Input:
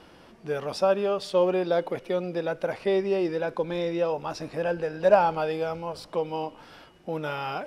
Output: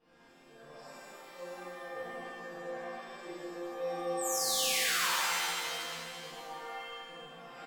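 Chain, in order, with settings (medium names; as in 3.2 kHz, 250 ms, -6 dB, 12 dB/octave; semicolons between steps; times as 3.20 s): treble shelf 6.9 kHz -10.5 dB; reverse; compression, threshold -33 dBFS, peak gain reduction 19 dB; reverse; square tremolo 1.6 Hz, depth 60%, duty 40%; chord resonator F3 sus4, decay 0.65 s; painted sound fall, 4.17–5.12 s, 830–8600 Hz -48 dBFS; reverse bouncing-ball echo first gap 60 ms, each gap 1.5×, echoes 5; pitch-shifted reverb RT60 1.7 s, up +7 st, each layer -2 dB, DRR -12 dB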